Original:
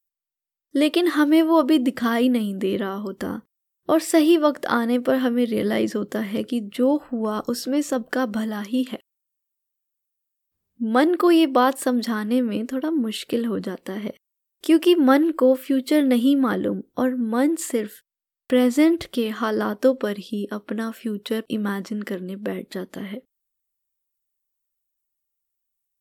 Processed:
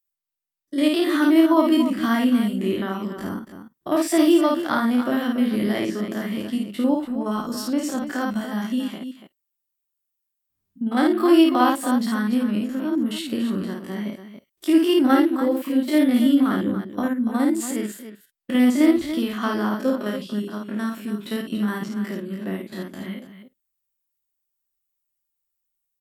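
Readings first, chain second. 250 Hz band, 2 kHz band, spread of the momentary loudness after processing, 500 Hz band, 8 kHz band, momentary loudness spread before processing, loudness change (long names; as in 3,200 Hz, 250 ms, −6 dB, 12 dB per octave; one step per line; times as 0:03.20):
+1.0 dB, −0.5 dB, 14 LU, −3.0 dB, −0.5 dB, 14 LU, 0.0 dB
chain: spectrum averaged block by block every 50 ms
parametric band 480 Hz −12.5 dB 0.29 octaves
loudspeakers that aren't time-aligned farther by 18 metres −3 dB, 98 metres −10 dB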